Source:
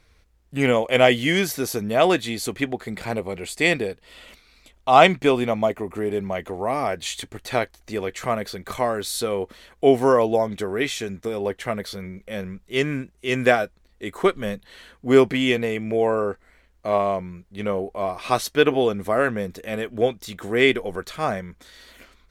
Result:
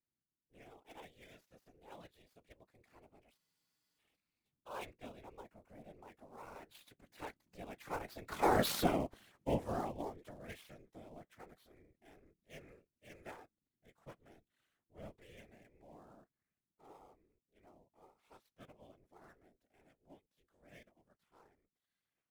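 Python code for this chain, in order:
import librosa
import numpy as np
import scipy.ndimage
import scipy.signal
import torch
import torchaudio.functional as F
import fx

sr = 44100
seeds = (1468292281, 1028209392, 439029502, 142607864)

y = fx.dead_time(x, sr, dead_ms=0.072)
y = fx.doppler_pass(y, sr, speed_mps=15, closest_m=1.2, pass_at_s=8.68)
y = y * np.sin(2.0 * np.pi * 190.0 * np.arange(len(y)) / sr)
y = fx.whisperise(y, sr, seeds[0])
y = fx.spec_freeze(y, sr, seeds[1], at_s=3.39, hold_s=0.59)
y = F.gain(torch.from_numpy(y), 4.0).numpy()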